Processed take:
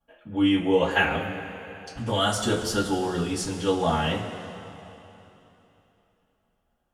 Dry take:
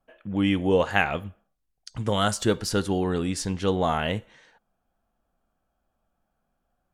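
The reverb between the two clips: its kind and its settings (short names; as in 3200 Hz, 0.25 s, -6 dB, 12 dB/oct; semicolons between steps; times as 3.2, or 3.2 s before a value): two-slope reverb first 0.2 s, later 3.2 s, from -19 dB, DRR -9.5 dB; gain -9.5 dB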